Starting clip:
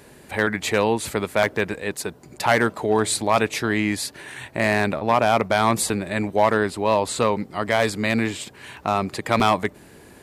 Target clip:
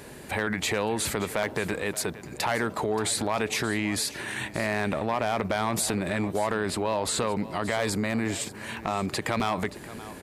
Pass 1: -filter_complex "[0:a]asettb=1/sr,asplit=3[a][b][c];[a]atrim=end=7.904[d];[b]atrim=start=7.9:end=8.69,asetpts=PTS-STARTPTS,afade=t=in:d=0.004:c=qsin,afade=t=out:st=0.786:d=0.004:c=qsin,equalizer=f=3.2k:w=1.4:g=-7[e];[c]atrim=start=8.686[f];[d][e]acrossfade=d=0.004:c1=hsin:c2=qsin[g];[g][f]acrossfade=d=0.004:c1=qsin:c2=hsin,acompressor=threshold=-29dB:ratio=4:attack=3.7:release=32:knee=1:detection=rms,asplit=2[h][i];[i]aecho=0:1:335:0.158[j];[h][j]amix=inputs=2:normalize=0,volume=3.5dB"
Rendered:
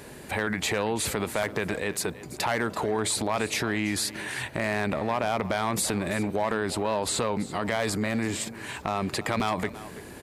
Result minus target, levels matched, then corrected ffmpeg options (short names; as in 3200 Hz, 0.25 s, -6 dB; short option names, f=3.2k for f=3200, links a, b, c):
echo 0.242 s early
-filter_complex "[0:a]asettb=1/sr,asplit=3[a][b][c];[a]atrim=end=7.904[d];[b]atrim=start=7.9:end=8.69,asetpts=PTS-STARTPTS,afade=t=in:d=0.004:c=qsin,afade=t=out:st=0.786:d=0.004:c=qsin,equalizer=f=3.2k:w=1.4:g=-7[e];[c]atrim=start=8.686[f];[d][e]acrossfade=d=0.004:c1=hsin:c2=qsin[g];[g][f]acrossfade=d=0.004:c1=qsin:c2=hsin,acompressor=threshold=-29dB:ratio=4:attack=3.7:release=32:knee=1:detection=rms,asplit=2[h][i];[i]aecho=0:1:577:0.158[j];[h][j]amix=inputs=2:normalize=0,volume=3.5dB"